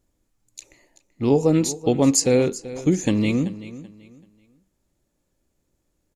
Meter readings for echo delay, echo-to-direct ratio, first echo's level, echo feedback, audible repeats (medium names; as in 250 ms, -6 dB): 383 ms, -15.5 dB, -16.0 dB, 28%, 2